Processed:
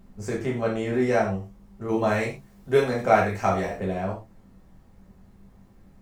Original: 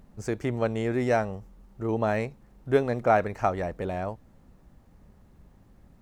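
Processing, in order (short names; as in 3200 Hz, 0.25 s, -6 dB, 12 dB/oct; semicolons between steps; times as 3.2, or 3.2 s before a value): 1.88–3.77 high shelf 2600 Hz +8.5 dB; non-linear reverb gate 0.14 s falling, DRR -4.5 dB; gain -3.5 dB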